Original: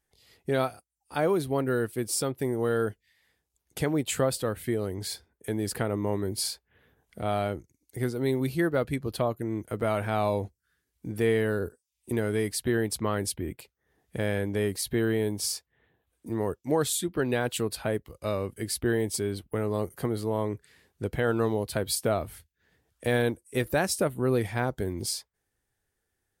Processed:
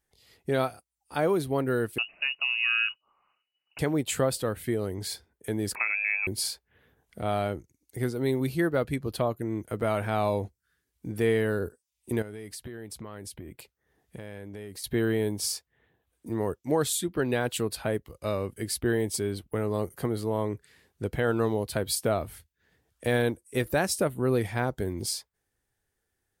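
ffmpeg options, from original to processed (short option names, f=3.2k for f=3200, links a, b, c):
-filter_complex "[0:a]asettb=1/sr,asplit=3[a][b][c];[a]atrim=end=1.984[d];[b]atrim=start=1.98:end=3.79,asetpts=PTS-STARTPTS,afade=t=in:d=0.004:c=qsin,afade=t=out:st=1.806:d=0.004:c=qsin,lowpass=f=2.6k:t=q:w=0.5098,lowpass=f=2.6k:t=q:w=0.6013,lowpass=f=2.6k:t=q:w=0.9,lowpass=f=2.6k:t=q:w=2.563,afreqshift=-3000[e];[c]atrim=start=3.786[f];[d][e]acrossfade=d=0.004:c1=hsin:c2=qsin[g];[g][f]acrossfade=d=0.004:c1=qsin:c2=hsin,asettb=1/sr,asplit=3[h][i][j];[h]atrim=end=5.754[k];[i]atrim=start=5.75:end=6.27,asetpts=PTS-STARTPTS,afade=t=in:d=0.004:c=qsin,afade=t=out:st=0.516:d=0.004:c=qsin,lowpass=f=2.3k:t=q:w=0.5098,lowpass=f=2.3k:t=q:w=0.6013,lowpass=f=2.3k:t=q:w=0.9,lowpass=f=2.3k:t=q:w=2.563,afreqshift=-2700[l];[j]atrim=start=6.266[m];[k][l]acrossfade=d=0.004:c1=hsin:c2=qsin[n];[n][m]acrossfade=d=0.004:c1=qsin:c2=hsin,asettb=1/sr,asplit=3[o][p][q];[o]atrim=end=12.224[r];[p]atrim=start=12.22:end=14.84,asetpts=PTS-STARTPTS,afade=t=in:d=0.004:c=qsin,afade=t=out:st=2.616:d=0.004:c=qsin,acompressor=threshold=-37dB:ratio=8:attack=3.2:release=140:knee=1:detection=peak[s];[q]atrim=start=14.836[t];[r][s]acrossfade=d=0.004:c1=hsin:c2=qsin[u];[u][t]acrossfade=d=0.004:c1=qsin:c2=hsin"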